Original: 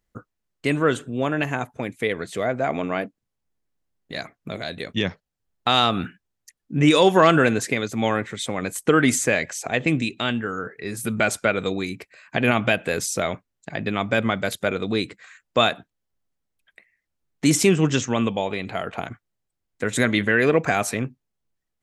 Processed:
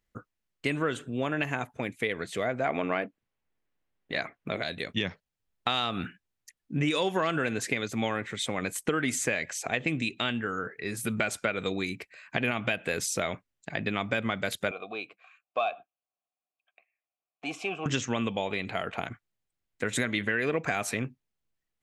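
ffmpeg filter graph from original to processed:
-filter_complex "[0:a]asettb=1/sr,asplit=3[s0][s1][s2];[s0]atrim=end=2.654[s3];[s1]atrim=start=2.65:end=4.63,asetpts=PTS-STARTPTS,afade=t=in:d=0.004:c=qsin,afade=t=out:st=1.976:d=0.004:c=qsin,acontrast=33,bass=f=250:g=-5,treble=f=4000:g=-11[s4];[s2]atrim=start=4.626[s5];[s3][s4]acrossfade=d=0.004:c1=hsin:c2=qsin[s6];[s6][s5]acrossfade=d=0.004:c1=qsin:c2=hsin,asettb=1/sr,asplit=3[s7][s8][s9];[s7]atrim=end=14.714[s10];[s8]atrim=start=14.71:end=17.86,asetpts=PTS-STARTPTS,afade=t=in:d=0.004:c=qsin,afade=t=out:st=3.146:d=0.004:c=qsin,acontrast=75,asplit=3[s11][s12][s13];[s11]bandpass=f=730:t=q:w=8,volume=1[s14];[s12]bandpass=f=1090:t=q:w=8,volume=0.501[s15];[s13]bandpass=f=2440:t=q:w=8,volume=0.355[s16];[s14][s15][s16]amix=inputs=3:normalize=0[s17];[s9]atrim=start=17.856[s18];[s10][s17]acrossfade=d=0.004:c1=hsin:c2=qsin[s19];[s19][s18]acrossfade=d=0.004:c1=qsin:c2=hsin,equalizer=f=2500:t=o:w=1.4:g=4.5,acompressor=threshold=0.1:ratio=5,volume=0.596"

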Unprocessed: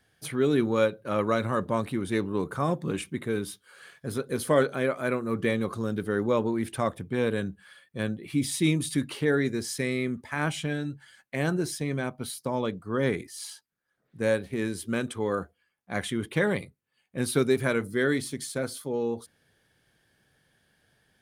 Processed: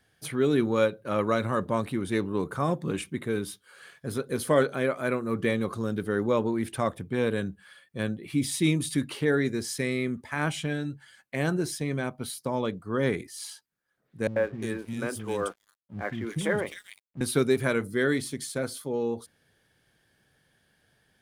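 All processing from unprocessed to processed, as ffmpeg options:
-filter_complex "[0:a]asettb=1/sr,asplit=3[s0][s1][s2];[s0]atrim=end=14.274[s3];[s1]atrim=start=14.27:end=17.21,asetpts=PTS-STARTPTS,afade=t=in:d=0.004:c=qsin,afade=t=out:st=2.936:d=0.004:c=qsin,bandreject=f=4100:w=7.2,acrossover=split=260|2500[s4][s5][s6];[s5]adelay=90[s7];[s6]adelay=350[s8];[s4][s7][s8]amix=inputs=3:normalize=0,atrim=end_sample=129654,aeval=exprs='sgn(val(0))*max(abs(val(0))-0.00237,0)':c=same[s9];[s2]atrim=start=17.206[s10];[s3][s9]acrossfade=d=0.004:c1=hsin:c2=qsin[s11];[s11][s10]acrossfade=d=0.004:c1=qsin:c2=hsin"

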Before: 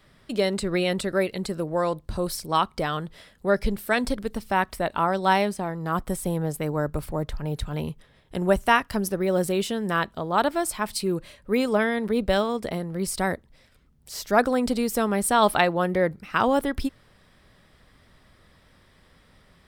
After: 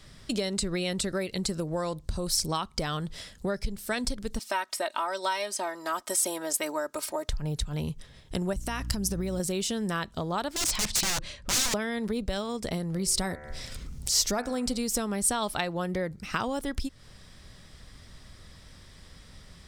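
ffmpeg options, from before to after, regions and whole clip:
-filter_complex "[0:a]asettb=1/sr,asplit=3[s0][s1][s2];[s0]atrim=end=4.394[s3];[s1]atrim=start=4.39:end=7.29,asetpts=PTS-STARTPTS,afade=t=in:d=0.004:c=qsin,afade=t=out:st=2.896:d=0.004:c=qsin,highpass=560,aecho=1:1:3.2:0.77,atrim=end_sample=127890[s4];[s2]atrim=start=7.286[s5];[s3][s4]acrossfade=d=0.004:c1=hsin:c2=qsin[s6];[s6][s5]acrossfade=d=0.004:c1=qsin:c2=hsin,asettb=1/sr,asplit=3[s7][s8][s9];[s7]atrim=end=8.534[s10];[s8]atrim=start=8.53:end=9.4,asetpts=PTS-STARTPTS,afade=t=in:d=0.004:c=qsin,afade=t=out:st=0.866:d=0.004:c=qsin,bass=f=250:g=6,treble=f=4000:g=4,acompressor=threshold=0.0708:ratio=6:attack=3.2:release=140:knee=1:detection=peak,aeval=exprs='val(0)+0.0112*(sin(2*PI*60*n/s)+sin(2*PI*2*60*n/s)/2+sin(2*PI*3*60*n/s)/3+sin(2*PI*4*60*n/s)/4+sin(2*PI*5*60*n/s)/5)':c=same[s11];[s9]atrim=start=9.396[s12];[s10][s11]acrossfade=d=0.004:c1=hsin:c2=qsin[s13];[s13][s12]acrossfade=d=0.004:c1=qsin:c2=hsin,asettb=1/sr,asplit=3[s14][s15][s16];[s14]atrim=end=10.564[s17];[s15]atrim=start=10.56:end=11.74,asetpts=PTS-STARTPTS,afade=t=in:d=0.004:c=qsin,afade=t=out:st=1.176:d=0.004:c=qsin,highshelf=f=2500:g=5.5,adynamicsmooth=sensitivity=2.5:basefreq=4400,aeval=exprs='(mod(21.1*val(0)+1,2)-1)/21.1':c=same[s18];[s16]atrim=start=11.736[s19];[s17][s18]acrossfade=d=0.004:c1=hsin:c2=qsin[s20];[s20][s19]acrossfade=d=0.004:c1=qsin:c2=hsin,asettb=1/sr,asplit=3[s21][s22][s23];[s21]atrim=end=12.954[s24];[s22]atrim=start=12.95:end=14.79,asetpts=PTS-STARTPTS,afade=t=in:d=0.004:c=qsin,afade=t=out:st=1.836:d=0.004:c=qsin,bandreject=f=74.8:t=h:w=4,bandreject=f=149.6:t=h:w=4,bandreject=f=224.4:t=h:w=4,bandreject=f=299.2:t=h:w=4,bandreject=f=374:t=h:w=4,bandreject=f=448.8:t=h:w=4,bandreject=f=523.6:t=h:w=4,bandreject=f=598.4:t=h:w=4,bandreject=f=673.2:t=h:w=4,bandreject=f=748:t=h:w=4,bandreject=f=822.8:t=h:w=4,bandreject=f=897.6:t=h:w=4,bandreject=f=972.4:t=h:w=4,bandreject=f=1047.2:t=h:w=4,bandreject=f=1122:t=h:w=4,bandreject=f=1196.8:t=h:w=4,bandreject=f=1271.6:t=h:w=4,bandreject=f=1346.4:t=h:w=4,bandreject=f=1421.2:t=h:w=4,bandreject=f=1496:t=h:w=4,bandreject=f=1570.8:t=h:w=4,bandreject=f=1645.6:t=h:w=4,bandreject=f=1720.4:t=h:w=4,bandreject=f=1795.2:t=h:w=4,bandreject=f=1870:t=h:w=4,bandreject=f=1944.8:t=h:w=4,bandreject=f=2019.6:t=h:w=4,bandreject=f=2094.4:t=h:w=4,bandreject=f=2169.2:t=h:w=4,bandreject=f=2244:t=h:w=4,bandreject=f=2318.8:t=h:w=4,bandreject=f=2393.6:t=h:w=4,bandreject=f=2468.4:t=h:w=4,bandreject=f=2543.2:t=h:w=4,bandreject=f=2618:t=h:w=4,bandreject=f=2692.8:t=h:w=4,bandreject=f=2767.6:t=h:w=4,acompressor=mode=upward:threshold=0.0224:ratio=2.5:attack=3.2:release=140:knee=2.83:detection=peak,bandreject=f=1600:w=22[s25];[s23]atrim=start=14.786[s26];[s24][s25]acrossfade=d=0.004:c1=hsin:c2=qsin[s27];[s27][s26]acrossfade=d=0.004:c1=qsin:c2=hsin,lowshelf=f=170:g=10.5,acompressor=threshold=0.0398:ratio=6,equalizer=f=6400:t=o:w=1.6:g=14"

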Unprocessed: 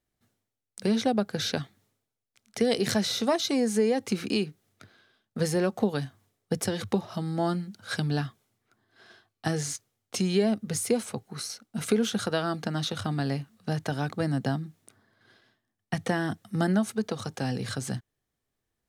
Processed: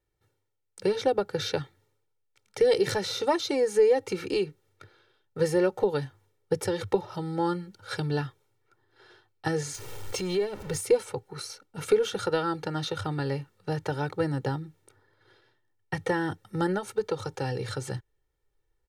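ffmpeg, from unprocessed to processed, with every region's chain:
-filter_complex "[0:a]asettb=1/sr,asplit=3[s0][s1][s2];[s0]atrim=end=9.744[s3];[s1]atrim=start=9.74:end=10.81,asetpts=PTS-STARTPTS,afade=t=in:d=0.004:c=qsin,afade=t=out:st=1.066:d=0.004:c=qsin,aeval=exprs='val(0)+0.5*0.0158*sgn(val(0))':c=same,acompressor=threshold=0.0631:ratio=6:attack=3.2:release=140:knee=1:detection=peak[s4];[s2]atrim=start=10.806[s5];[s3][s4]acrossfade=d=0.004:c1=hsin:c2=qsin[s6];[s6][s5]acrossfade=d=0.004:c1=qsin:c2=hsin,highshelf=f=3000:g=-8.5,aecho=1:1:2.2:0.96,asubboost=boost=3:cutoff=52"

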